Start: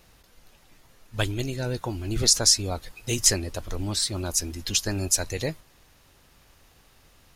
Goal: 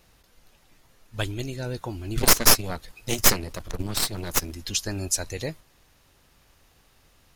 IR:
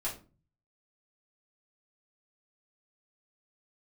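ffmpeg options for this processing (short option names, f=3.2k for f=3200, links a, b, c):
-filter_complex "[0:a]asettb=1/sr,asplit=3[a][b][c];[a]atrim=end=2.174[d];[b]atrim=start=2.17:end=4.55,asetpts=PTS-STARTPTS,afade=t=in:d=0.004:c=qsin,afade=t=out:st=2.376:d=0.004:c=qsin,aeval=exprs='0.75*(cos(1*acos(clip(val(0)/0.75,-1,1)))-cos(1*PI/2))+0.376*(cos(6*acos(clip(val(0)/0.75,-1,1)))-cos(6*PI/2))':c=same[e];[c]atrim=start=4.546[f];[d][e]acrossfade=d=0.004:c1=hsin:c2=qsin[g];[g][f]acrossfade=d=0.004:c1=qsin:c2=hsin,volume=-2.5dB"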